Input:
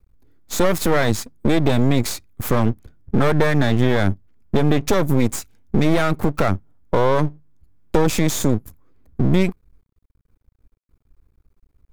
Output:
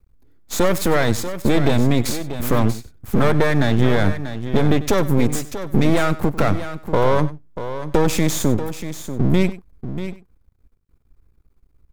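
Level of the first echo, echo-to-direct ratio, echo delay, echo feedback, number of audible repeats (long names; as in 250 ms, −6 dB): −16.5 dB, −10.0 dB, 96 ms, repeats not evenly spaced, 3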